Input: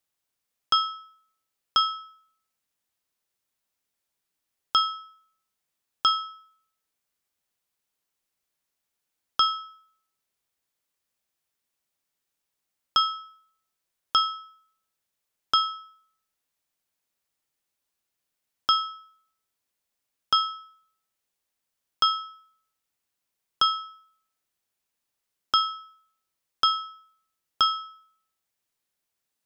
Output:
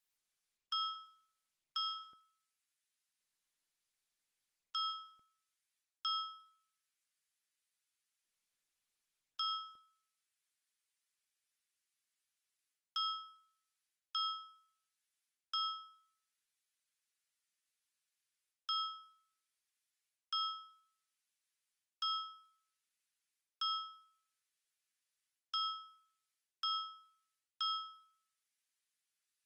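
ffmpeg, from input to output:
ffmpeg -i in.wav -af "highpass=frequency=1400:width=0.5412,highpass=frequency=1400:width=1.3066,areverse,acompressor=threshold=-32dB:ratio=8,areverse,volume=-3.5dB" -ar 48000 -c:a libopus -b:a 24k out.opus

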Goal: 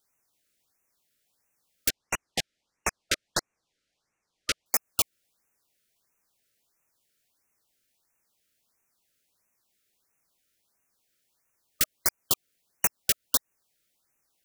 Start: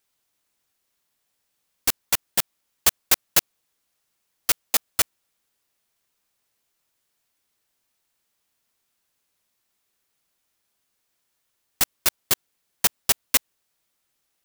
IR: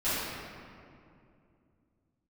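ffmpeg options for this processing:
-filter_complex "[0:a]asettb=1/sr,asplit=3[link_01][link_02][link_03];[link_01]atrim=end=1.894[link_04];[link_02]atrim=start=1.89:end=4.66,asetpts=PTS-STARTPTS,afade=type=in:duration=0.004:curve=qsin,afade=type=out:start_time=2.766:duration=0.004:curve=qsin,lowpass=5500[link_05];[link_03]atrim=start=4.656[link_06];[link_04][link_05]acrossfade=duration=0.004:curve1=hsin:curve2=qsin[link_07];[link_07][link_06]acrossfade=duration=0.004:curve1=qsin:curve2=hsin,acompressor=threshold=-23dB:ratio=2,afftfilt=real='re*(1-between(b*sr/1024,860*pow(4100/860,0.5+0.5*sin(2*PI*1.5*pts/sr))/1.41,860*pow(4100/860,0.5+0.5*sin(2*PI*1.5*pts/sr))*1.41))':imag='im*(1-between(b*sr/1024,860*pow(4100/860,0.5+0.5*sin(2*PI*1.5*pts/sr))/1.41,860*pow(4100/860,0.5+0.5*sin(2*PI*1.5*pts/sr))*1.41))':win_size=1024:overlap=0.75"

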